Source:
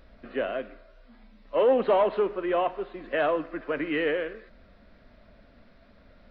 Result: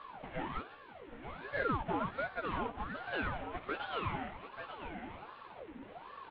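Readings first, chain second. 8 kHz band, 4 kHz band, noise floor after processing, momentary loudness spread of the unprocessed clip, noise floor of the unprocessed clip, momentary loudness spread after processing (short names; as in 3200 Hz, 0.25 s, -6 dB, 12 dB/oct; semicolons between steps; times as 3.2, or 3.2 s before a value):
n/a, -6.5 dB, -54 dBFS, 14 LU, -56 dBFS, 15 LU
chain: CVSD 16 kbps; chorus voices 4, 0.79 Hz, delay 13 ms, depth 2.3 ms; compressor 2:1, threshold -52 dBFS, peak gain reduction 17.5 dB; on a send: echo 0.889 s -8 dB; on the sum: ring modulator with a swept carrier 690 Hz, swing 65%, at 1.3 Hz; gain +8.5 dB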